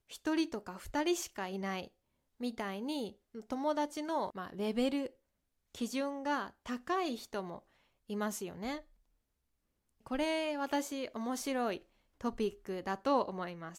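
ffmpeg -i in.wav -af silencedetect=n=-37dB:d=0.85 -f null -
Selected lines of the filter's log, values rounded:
silence_start: 8.78
silence_end: 10.11 | silence_duration: 1.33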